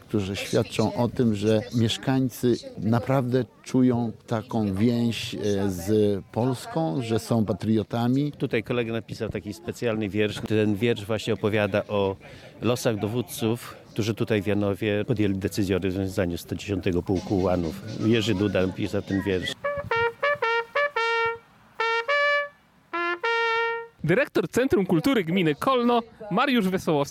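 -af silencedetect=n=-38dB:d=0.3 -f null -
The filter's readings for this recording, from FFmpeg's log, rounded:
silence_start: 21.37
silence_end: 21.79 | silence_duration: 0.42
silence_start: 22.48
silence_end: 22.93 | silence_duration: 0.46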